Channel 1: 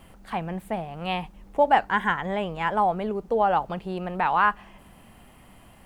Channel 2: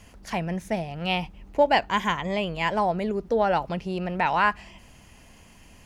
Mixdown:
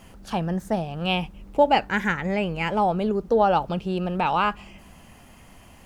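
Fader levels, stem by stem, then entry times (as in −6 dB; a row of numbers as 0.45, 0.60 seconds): +0.5, −2.5 decibels; 0.00, 0.00 seconds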